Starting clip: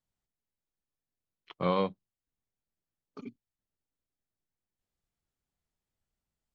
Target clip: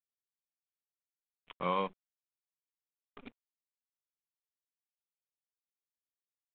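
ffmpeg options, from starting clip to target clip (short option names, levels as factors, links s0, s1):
-af "equalizer=f=100:t=o:w=0.67:g=-11,equalizer=f=1000:t=o:w=0.67:g=7,equalizer=f=2500:t=o:w=0.67:g=8,acrusher=bits=7:dc=4:mix=0:aa=0.000001,aresample=8000,aresample=44100,volume=0.447"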